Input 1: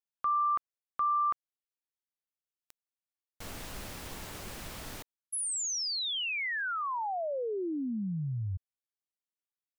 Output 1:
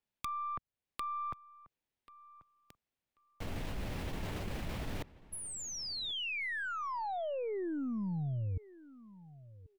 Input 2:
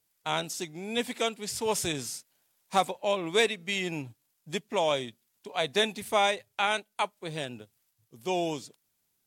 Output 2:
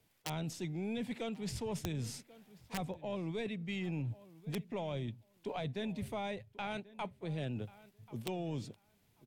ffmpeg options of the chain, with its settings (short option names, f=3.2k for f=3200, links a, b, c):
-filter_complex "[0:a]acrossover=split=160[a][b];[b]acompressor=threshold=-38dB:ratio=10:attack=27:release=902:knee=2.83:detection=peak[c];[a][c]amix=inputs=2:normalize=0,aeval=exprs='0.112*(cos(1*acos(clip(val(0)/0.112,-1,1)))-cos(1*PI/2))+0.00794*(cos(4*acos(clip(val(0)/0.112,-1,1)))-cos(4*PI/2))':c=same,asplit=2[d][e];[e]asoftclip=type=tanh:threshold=-32.5dB,volume=-4.5dB[f];[d][f]amix=inputs=2:normalize=0,bass=f=250:g=4,treble=f=4k:g=-14,aeval=exprs='(mod(13.3*val(0)+1,2)-1)/13.3':c=same,equalizer=f=1.3k:w=1.3:g=-5.5,areverse,acompressor=threshold=-42dB:ratio=6:attack=5.3:release=114:knee=6:detection=peak,areverse,asplit=2[g][h];[h]adelay=1087,lowpass=f=2.7k:p=1,volume=-19dB,asplit=2[i][j];[j]adelay=1087,lowpass=f=2.7k:p=1,volume=0.18[k];[g][i][k]amix=inputs=3:normalize=0,volume=6.5dB"